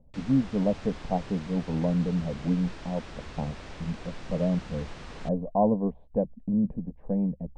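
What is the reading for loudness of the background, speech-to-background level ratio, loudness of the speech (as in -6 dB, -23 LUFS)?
-44.0 LUFS, 14.5 dB, -29.5 LUFS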